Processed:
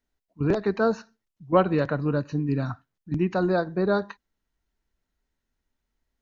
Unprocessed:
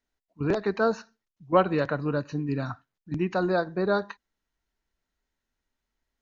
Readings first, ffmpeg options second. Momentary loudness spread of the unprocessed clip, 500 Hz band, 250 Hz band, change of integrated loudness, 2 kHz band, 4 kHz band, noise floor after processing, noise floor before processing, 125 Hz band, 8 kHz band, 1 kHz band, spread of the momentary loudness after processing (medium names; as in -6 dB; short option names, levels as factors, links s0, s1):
13 LU, +1.5 dB, +3.0 dB, +2.0 dB, -0.5 dB, -1.0 dB, -83 dBFS, under -85 dBFS, +4.0 dB, no reading, 0.0 dB, 11 LU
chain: -af "lowshelf=f=390:g=6,volume=0.891"